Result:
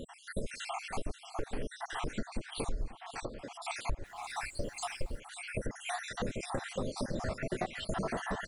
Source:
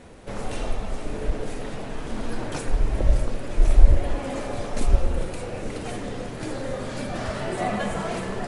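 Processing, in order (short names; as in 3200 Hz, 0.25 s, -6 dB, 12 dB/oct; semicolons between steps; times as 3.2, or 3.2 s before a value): random spectral dropouts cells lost 70%; compressor 8:1, threshold -37 dBFS, peak gain reduction 25 dB; 2.95–3.54 BPF 180–7400 Hz; 4.04–5.17 added noise pink -70 dBFS; echo 0.539 s -15.5 dB; gain +5.5 dB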